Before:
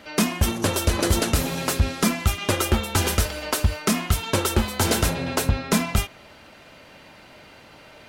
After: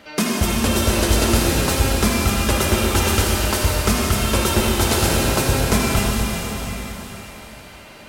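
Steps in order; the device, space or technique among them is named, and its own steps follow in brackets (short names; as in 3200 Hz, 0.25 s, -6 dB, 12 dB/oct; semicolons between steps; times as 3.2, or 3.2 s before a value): cathedral (reverb RT60 4.1 s, pre-delay 50 ms, DRR -3.5 dB)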